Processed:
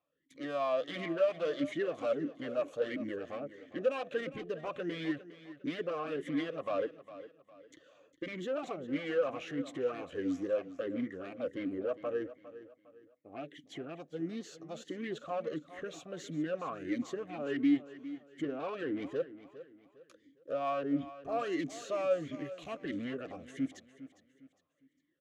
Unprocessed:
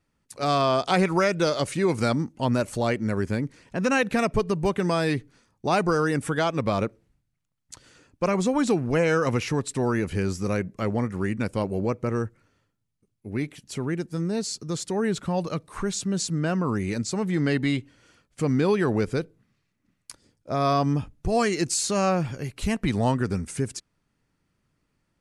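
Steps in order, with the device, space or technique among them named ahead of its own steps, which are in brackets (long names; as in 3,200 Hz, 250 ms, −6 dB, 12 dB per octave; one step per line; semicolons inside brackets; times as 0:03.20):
EQ curve with evenly spaced ripples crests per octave 1.1, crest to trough 10 dB
talk box (tube saturation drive 27 dB, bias 0.4; formant filter swept between two vowels a-i 1.5 Hz)
repeating echo 406 ms, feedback 36%, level −15 dB
level +6 dB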